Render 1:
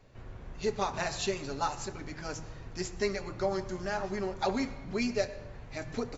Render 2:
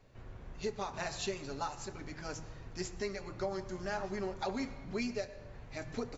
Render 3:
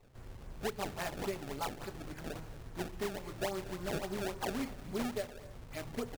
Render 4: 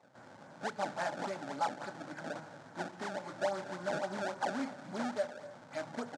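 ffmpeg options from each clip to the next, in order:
-af "alimiter=limit=-22.5dB:level=0:latency=1:release=371,volume=-3.5dB"
-af "acrusher=samples=25:mix=1:aa=0.000001:lfo=1:lforange=40:lforate=3.6,aecho=1:1:235:0.106"
-af "asoftclip=type=tanh:threshold=-30.5dB,highpass=f=160:w=0.5412,highpass=f=160:w=1.3066,equalizer=f=280:t=q:w=4:g=3,equalizer=f=410:t=q:w=4:g=-9,equalizer=f=590:t=q:w=4:g=8,equalizer=f=850:t=q:w=4:g=8,equalizer=f=1.5k:t=q:w=4:g=9,equalizer=f=2.7k:t=q:w=4:g=-5,lowpass=f=8k:w=0.5412,lowpass=f=8k:w=1.3066"

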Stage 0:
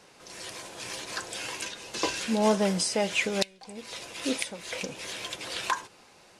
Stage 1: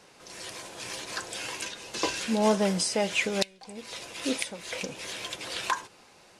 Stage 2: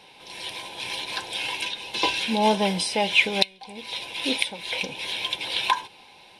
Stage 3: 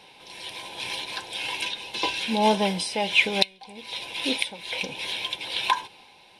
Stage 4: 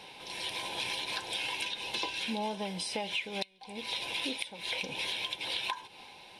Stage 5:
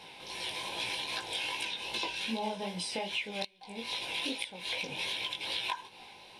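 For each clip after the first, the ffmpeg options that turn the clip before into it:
-af anull
-af "superequalizer=9b=2.24:10b=0.501:12b=2.51:13b=3.16:15b=0.398,volume=1dB"
-af "tremolo=f=1.2:d=0.31"
-af "acompressor=threshold=-33dB:ratio=16,volume=1.5dB"
-af "flanger=delay=17:depth=5:speed=2.5,volume=2.5dB"

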